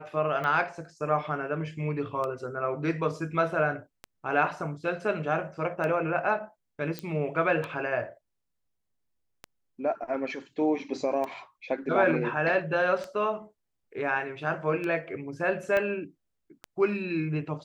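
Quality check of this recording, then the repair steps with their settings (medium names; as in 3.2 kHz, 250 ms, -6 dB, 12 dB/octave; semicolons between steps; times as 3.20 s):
tick 33 1/3 rpm -21 dBFS
6.99 s: pop -18 dBFS
15.77 s: pop -16 dBFS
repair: de-click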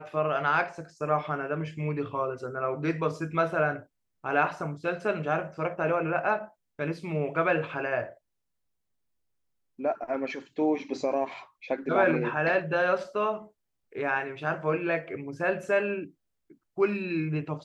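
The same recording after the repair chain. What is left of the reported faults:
15.77 s: pop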